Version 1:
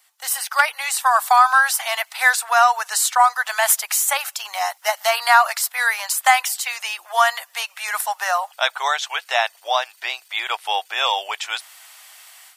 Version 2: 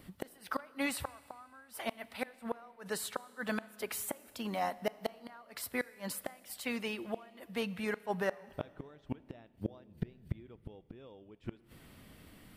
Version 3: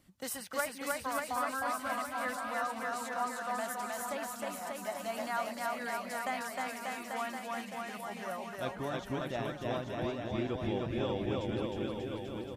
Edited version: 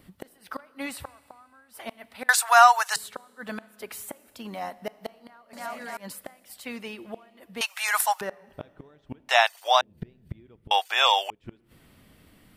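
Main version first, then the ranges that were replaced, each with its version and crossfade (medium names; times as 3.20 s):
2
2.29–2.96 s: from 1
5.53–5.97 s: from 3
7.61–8.21 s: from 1
9.29–9.81 s: from 1
10.71–11.30 s: from 1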